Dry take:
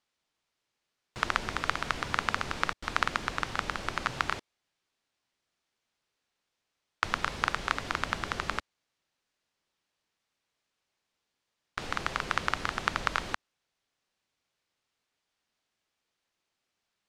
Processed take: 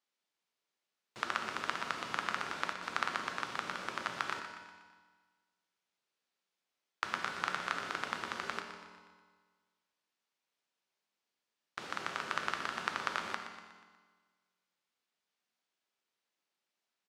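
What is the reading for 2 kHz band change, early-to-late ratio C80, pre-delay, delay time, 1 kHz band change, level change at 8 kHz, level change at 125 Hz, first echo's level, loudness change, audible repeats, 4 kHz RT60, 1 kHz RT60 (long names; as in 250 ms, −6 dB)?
−5.5 dB, 6.0 dB, 4 ms, 121 ms, −5.5 dB, −5.5 dB, −13.5 dB, −11.5 dB, −5.5 dB, 4, 1.4 s, 1.6 s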